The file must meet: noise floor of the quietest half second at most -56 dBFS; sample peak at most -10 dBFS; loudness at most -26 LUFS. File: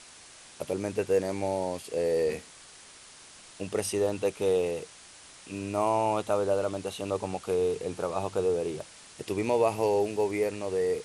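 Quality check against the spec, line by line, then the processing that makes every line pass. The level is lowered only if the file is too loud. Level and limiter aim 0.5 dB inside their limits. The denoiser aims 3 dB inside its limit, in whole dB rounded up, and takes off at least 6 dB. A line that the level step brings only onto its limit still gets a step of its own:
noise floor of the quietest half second -51 dBFS: fail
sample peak -13.0 dBFS: OK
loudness -29.5 LUFS: OK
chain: denoiser 8 dB, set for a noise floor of -51 dBFS

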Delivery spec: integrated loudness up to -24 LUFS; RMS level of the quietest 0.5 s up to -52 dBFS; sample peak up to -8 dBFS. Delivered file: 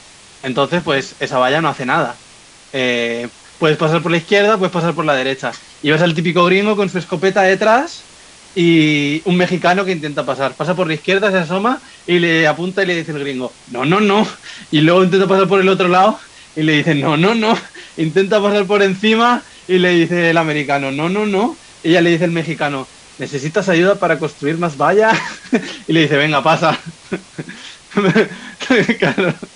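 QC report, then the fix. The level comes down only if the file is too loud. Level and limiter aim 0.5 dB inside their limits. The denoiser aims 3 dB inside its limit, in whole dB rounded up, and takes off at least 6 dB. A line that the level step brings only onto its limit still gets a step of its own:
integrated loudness -15.0 LUFS: fail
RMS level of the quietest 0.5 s -43 dBFS: fail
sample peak -2.0 dBFS: fail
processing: gain -9.5 dB

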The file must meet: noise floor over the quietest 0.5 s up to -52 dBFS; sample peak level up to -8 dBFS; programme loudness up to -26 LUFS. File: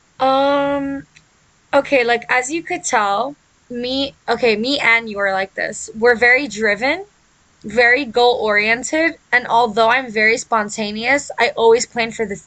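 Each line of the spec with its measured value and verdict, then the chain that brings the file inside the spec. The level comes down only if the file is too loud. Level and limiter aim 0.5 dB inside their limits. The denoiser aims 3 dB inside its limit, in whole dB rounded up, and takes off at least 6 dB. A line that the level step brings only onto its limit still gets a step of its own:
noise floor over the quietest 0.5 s -55 dBFS: OK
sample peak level -2.0 dBFS: fail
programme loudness -16.0 LUFS: fail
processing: gain -10.5 dB

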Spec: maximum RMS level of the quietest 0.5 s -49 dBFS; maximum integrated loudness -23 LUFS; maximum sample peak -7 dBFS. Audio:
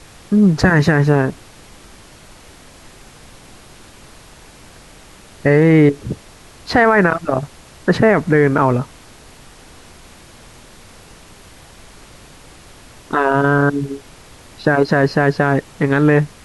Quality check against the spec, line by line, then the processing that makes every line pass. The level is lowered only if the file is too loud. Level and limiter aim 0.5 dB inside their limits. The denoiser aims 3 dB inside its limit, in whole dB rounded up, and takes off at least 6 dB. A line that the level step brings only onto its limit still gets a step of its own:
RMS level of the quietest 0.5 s -42 dBFS: fail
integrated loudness -15.0 LUFS: fail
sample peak -2.0 dBFS: fail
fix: gain -8.5 dB

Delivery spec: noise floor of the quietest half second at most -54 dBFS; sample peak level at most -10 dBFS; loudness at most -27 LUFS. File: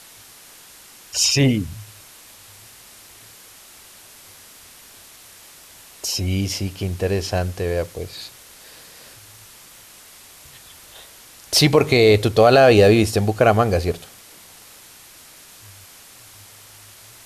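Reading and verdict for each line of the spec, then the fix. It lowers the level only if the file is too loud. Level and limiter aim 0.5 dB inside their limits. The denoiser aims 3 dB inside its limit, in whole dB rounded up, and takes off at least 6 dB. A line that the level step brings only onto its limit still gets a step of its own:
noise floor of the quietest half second -45 dBFS: fail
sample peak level -3.0 dBFS: fail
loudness -17.5 LUFS: fail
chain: gain -10 dB

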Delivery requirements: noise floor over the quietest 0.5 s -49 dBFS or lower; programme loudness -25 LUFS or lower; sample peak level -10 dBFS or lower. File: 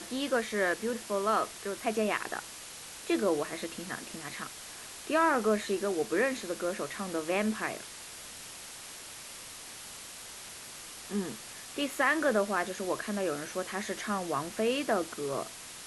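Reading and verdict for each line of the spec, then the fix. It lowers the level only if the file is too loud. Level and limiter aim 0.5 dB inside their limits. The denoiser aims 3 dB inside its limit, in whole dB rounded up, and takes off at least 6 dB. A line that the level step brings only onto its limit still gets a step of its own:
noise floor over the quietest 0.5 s -46 dBFS: fail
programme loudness -32.5 LUFS: OK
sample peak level -13.5 dBFS: OK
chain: denoiser 6 dB, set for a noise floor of -46 dBFS

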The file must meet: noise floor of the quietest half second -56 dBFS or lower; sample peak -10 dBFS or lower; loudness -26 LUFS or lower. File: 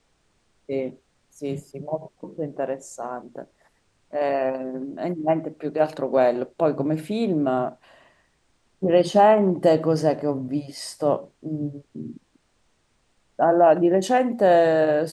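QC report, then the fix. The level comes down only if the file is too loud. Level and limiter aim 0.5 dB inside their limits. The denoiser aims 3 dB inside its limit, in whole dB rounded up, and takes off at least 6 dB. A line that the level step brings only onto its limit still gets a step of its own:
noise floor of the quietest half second -66 dBFS: OK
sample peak -5.5 dBFS: fail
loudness -22.5 LUFS: fail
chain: gain -4 dB; limiter -10.5 dBFS

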